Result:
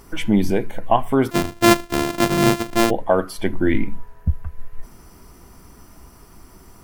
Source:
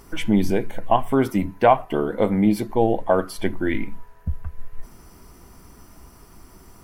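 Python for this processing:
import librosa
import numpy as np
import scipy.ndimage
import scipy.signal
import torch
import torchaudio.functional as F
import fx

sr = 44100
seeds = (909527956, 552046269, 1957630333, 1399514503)

y = fx.sample_sort(x, sr, block=128, at=(1.3, 2.89), fade=0.02)
y = fx.low_shelf(y, sr, hz=420.0, db=5.5, at=(3.53, 4.31))
y = y * 10.0 ** (1.5 / 20.0)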